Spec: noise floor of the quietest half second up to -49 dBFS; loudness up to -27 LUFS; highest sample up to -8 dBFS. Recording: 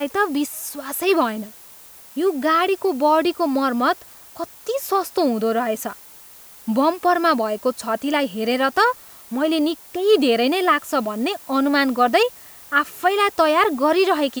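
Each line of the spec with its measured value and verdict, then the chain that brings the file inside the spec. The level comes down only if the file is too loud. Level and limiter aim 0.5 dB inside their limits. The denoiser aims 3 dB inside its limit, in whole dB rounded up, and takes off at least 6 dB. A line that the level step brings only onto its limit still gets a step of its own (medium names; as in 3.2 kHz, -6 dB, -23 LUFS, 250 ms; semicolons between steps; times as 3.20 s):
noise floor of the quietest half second -44 dBFS: fail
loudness -20.0 LUFS: fail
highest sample -4.5 dBFS: fail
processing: trim -7.5 dB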